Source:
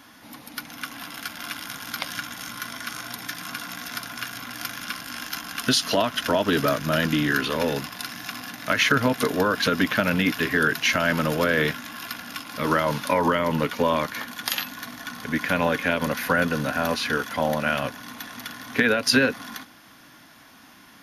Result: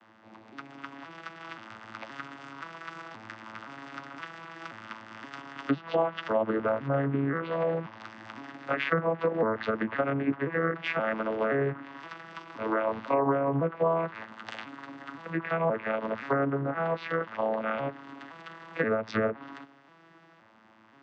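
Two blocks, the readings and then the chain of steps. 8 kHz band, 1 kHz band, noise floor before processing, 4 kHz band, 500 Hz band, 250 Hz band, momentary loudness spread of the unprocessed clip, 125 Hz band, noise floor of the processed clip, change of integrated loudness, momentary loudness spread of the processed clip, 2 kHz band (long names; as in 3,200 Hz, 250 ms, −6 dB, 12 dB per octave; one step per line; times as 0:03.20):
below −25 dB, −5.5 dB, −50 dBFS, −19.5 dB, −3.0 dB, −6.5 dB, 14 LU, −5.0 dB, −58 dBFS, −5.5 dB, 16 LU, −11.0 dB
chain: vocoder with an arpeggio as carrier major triad, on A2, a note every 523 ms
treble cut that deepens with the level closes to 1,400 Hz, closed at −19 dBFS
bass and treble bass −14 dB, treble −12 dB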